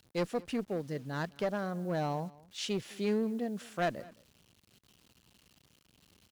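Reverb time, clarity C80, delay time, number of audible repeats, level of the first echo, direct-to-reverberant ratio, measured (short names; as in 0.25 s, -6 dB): none, none, 0.213 s, 1, -22.5 dB, none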